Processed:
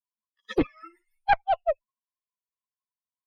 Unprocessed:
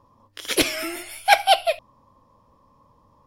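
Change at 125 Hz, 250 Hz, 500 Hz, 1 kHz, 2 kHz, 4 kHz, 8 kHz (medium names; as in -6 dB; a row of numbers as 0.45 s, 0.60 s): no reading, -0.5 dB, -4.5 dB, -5.5 dB, -10.0 dB, -21.0 dB, under -30 dB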